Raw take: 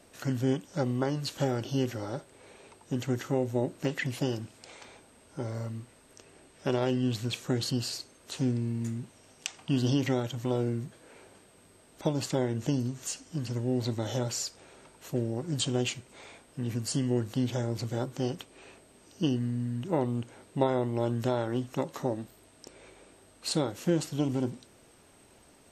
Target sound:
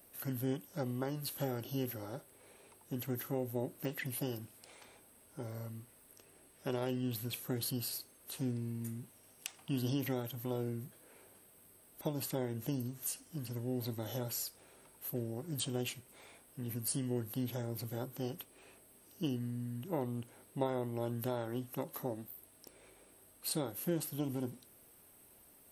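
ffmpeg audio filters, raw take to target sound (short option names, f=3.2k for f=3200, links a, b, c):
-af "aexciter=amount=15.5:drive=3.7:freq=10k,volume=-8.5dB"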